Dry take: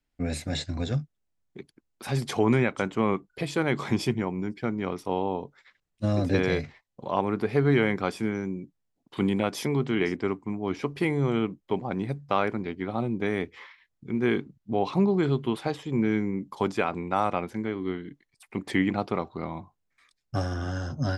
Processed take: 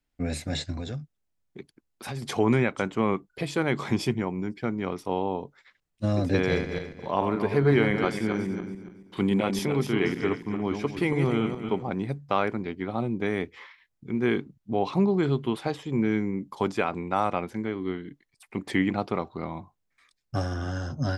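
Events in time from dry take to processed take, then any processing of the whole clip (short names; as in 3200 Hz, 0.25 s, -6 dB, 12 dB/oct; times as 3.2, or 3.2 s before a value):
0.72–2.23 compressor, threshold -30 dBFS
6.37–11.9 regenerating reverse delay 0.14 s, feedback 49%, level -6 dB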